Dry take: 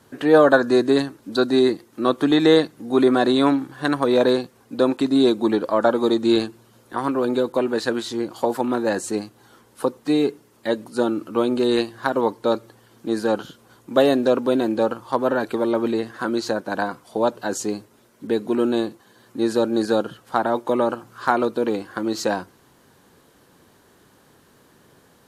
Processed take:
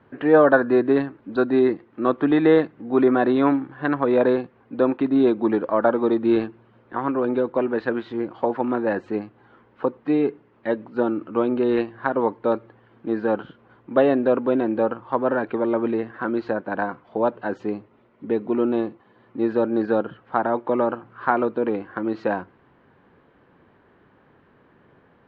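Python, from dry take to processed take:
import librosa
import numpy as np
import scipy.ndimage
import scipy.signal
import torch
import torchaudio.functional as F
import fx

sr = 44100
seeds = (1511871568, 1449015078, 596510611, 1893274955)

y = fx.notch(x, sr, hz=1600.0, q=7.9, at=(17.72, 19.49))
y = scipy.signal.sosfilt(scipy.signal.butter(4, 2500.0, 'lowpass', fs=sr, output='sos'), y)
y = F.gain(torch.from_numpy(y), -1.0).numpy()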